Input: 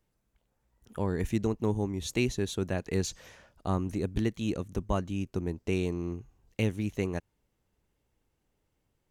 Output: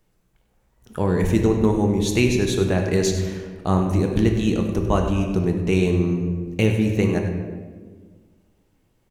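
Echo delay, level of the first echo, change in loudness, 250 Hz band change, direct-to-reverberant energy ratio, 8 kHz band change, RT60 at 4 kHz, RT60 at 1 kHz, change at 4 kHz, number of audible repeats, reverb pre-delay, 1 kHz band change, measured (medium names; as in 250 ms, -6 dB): 98 ms, -12.5 dB, +11.0 dB, +11.5 dB, 2.5 dB, +9.5 dB, 0.90 s, 1.2 s, +10.0 dB, 1, 3 ms, +10.5 dB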